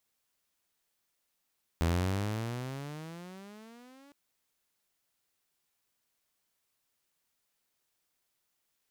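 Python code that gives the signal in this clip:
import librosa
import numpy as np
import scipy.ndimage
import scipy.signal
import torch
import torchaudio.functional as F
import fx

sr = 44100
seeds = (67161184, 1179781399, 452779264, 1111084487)

y = fx.riser_tone(sr, length_s=2.31, level_db=-22.5, wave='saw', hz=81.0, rise_st=22.0, swell_db=-30)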